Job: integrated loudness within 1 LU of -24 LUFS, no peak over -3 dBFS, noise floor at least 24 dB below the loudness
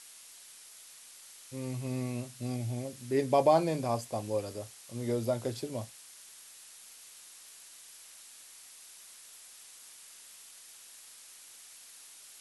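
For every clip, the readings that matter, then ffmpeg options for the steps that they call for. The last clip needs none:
noise floor -53 dBFS; noise floor target -57 dBFS; loudness -32.5 LUFS; peak -12.5 dBFS; loudness target -24.0 LUFS
-> -af "afftdn=nr=6:nf=-53"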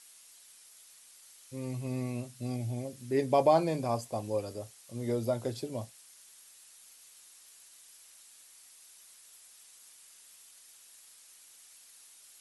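noise floor -57 dBFS; loudness -32.5 LUFS; peak -12.5 dBFS; loudness target -24.0 LUFS
-> -af "volume=8.5dB"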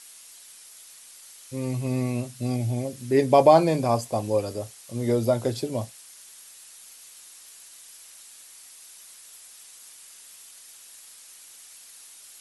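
loudness -24.0 LUFS; peak -4.0 dBFS; noise floor -49 dBFS

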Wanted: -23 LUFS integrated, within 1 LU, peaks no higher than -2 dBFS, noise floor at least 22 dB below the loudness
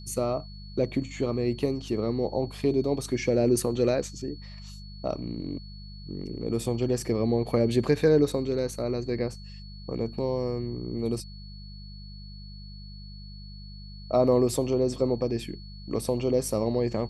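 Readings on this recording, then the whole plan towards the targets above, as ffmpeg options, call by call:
hum 50 Hz; harmonics up to 200 Hz; hum level -40 dBFS; steady tone 4400 Hz; tone level -49 dBFS; loudness -27.5 LUFS; peak -10.0 dBFS; loudness target -23.0 LUFS
-> -af "bandreject=f=50:t=h:w=4,bandreject=f=100:t=h:w=4,bandreject=f=150:t=h:w=4,bandreject=f=200:t=h:w=4"
-af "bandreject=f=4.4k:w=30"
-af "volume=4.5dB"

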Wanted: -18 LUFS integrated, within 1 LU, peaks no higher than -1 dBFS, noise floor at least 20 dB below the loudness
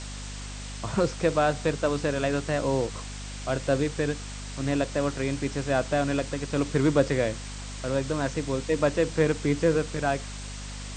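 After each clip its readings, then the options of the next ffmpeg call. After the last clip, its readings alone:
hum 50 Hz; harmonics up to 250 Hz; hum level -36 dBFS; noise floor -37 dBFS; noise floor target -47 dBFS; loudness -27.0 LUFS; peak -9.5 dBFS; loudness target -18.0 LUFS
-> -af "bandreject=f=50:t=h:w=6,bandreject=f=100:t=h:w=6,bandreject=f=150:t=h:w=6,bandreject=f=200:t=h:w=6,bandreject=f=250:t=h:w=6"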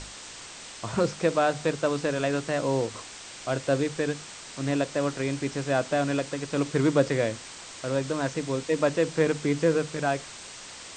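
hum none; noise floor -43 dBFS; noise floor target -47 dBFS
-> -af "afftdn=nr=6:nf=-43"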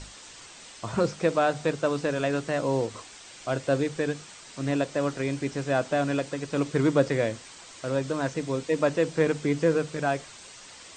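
noise floor -47 dBFS; noise floor target -48 dBFS
-> -af "afftdn=nr=6:nf=-47"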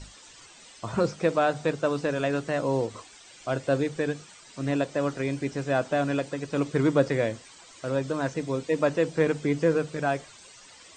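noise floor -51 dBFS; loudness -27.5 LUFS; peak -9.5 dBFS; loudness target -18.0 LUFS
-> -af "volume=9.5dB,alimiter=limit=-1dB:level=0:latency=1"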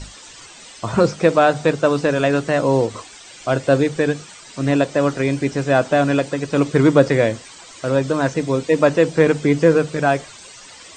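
loudness -18.0 LUFS; peak -1.0 dBFS; noise floor -41 dBFS

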